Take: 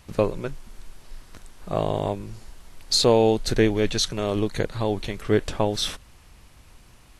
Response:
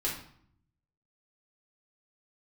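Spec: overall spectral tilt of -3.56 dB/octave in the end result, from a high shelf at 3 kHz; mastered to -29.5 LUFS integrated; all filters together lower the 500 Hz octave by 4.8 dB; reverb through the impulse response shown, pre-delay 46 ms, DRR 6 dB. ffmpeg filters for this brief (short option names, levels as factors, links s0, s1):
-filter_complex "[0:a]equalizer=f=500:t=o:g=-6,highshelf=f=3000:g=7,asplit=2[s0][s1];[1:a]atrim=start_sample=2205,adelay=46[s2];[s1][s2]afir=irnorm=-1:irlink=0,volume=0.266[s3];[s0][s3]amix=inputs=2:normalize=0,volume=0.447"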